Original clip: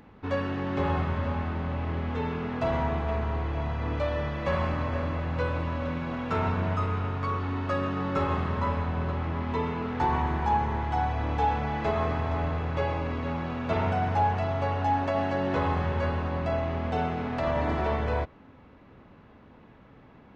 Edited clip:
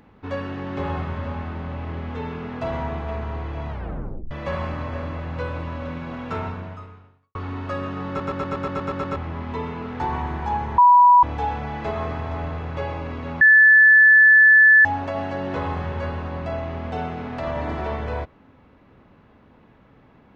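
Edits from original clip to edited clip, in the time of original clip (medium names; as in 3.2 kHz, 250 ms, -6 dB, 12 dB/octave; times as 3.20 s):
3.69 s: tape stop 0.62 s
6.33–7.35 s: fade out quadratic
8.08 s: stutter in place 0.12 s, 9 plays
10.78–11.23 s: bleep 979 Hz -8.5 dBFS
13.41–14.85 s: bleep 1.74 kHz -8.5 dBFS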